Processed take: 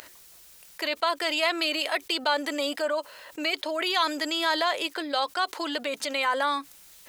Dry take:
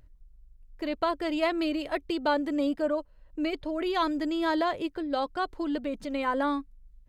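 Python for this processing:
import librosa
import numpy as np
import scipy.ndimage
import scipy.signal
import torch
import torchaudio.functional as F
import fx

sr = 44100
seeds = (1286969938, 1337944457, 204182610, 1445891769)

y = scipy.signal.sosfilt(scipy.signal.butter(2, 650.0, 'highpass', fs=sr, output='sos'), x)
y = fx.high_shelf(y, sr, hz=2200.0, db=11.5)
y = fx.env_flatten(y, sr, amount_pct=50)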